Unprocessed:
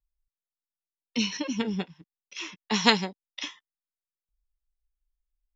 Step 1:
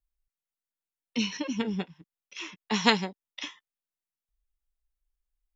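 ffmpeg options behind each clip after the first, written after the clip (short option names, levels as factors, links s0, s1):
-af "equalizer=f=4900:t=o:w=0.82:g=-4,volume=0.891"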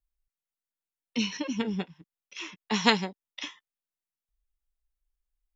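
-af anull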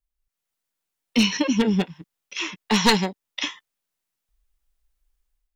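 -af "aeval=exprs='clip(val(0),-1,0.0794)':c=same,dynaudnorm=f=130:g=5:m=3.35"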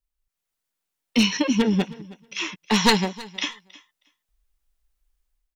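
-af "aecho=1:1:317|634:0.0944|0.0142"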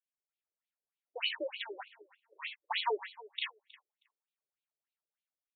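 -af "asoftclip=type=tanh:threshold=0.299,afftfilt=real='re*between(b*sr/1024,430*pow(3200/430,0.5+0.5*sin(2*PI*3.3*pts/sr))/1.41,430*pow(3200/430,0.5+0.5*sin(2*PI*3.3*pts/sr))*1.41)':imag='im*between(b*sr/1024,430*pow(3200/430,0.5+0.5*sin(2*PI*3.3*pts/sr))/1.41,430*pow(3200/430,0.5+0.5*sin(2*PI*3.3*pts/sr))*1.41)':win_size=1024:overlap=0.75,volume=0.501"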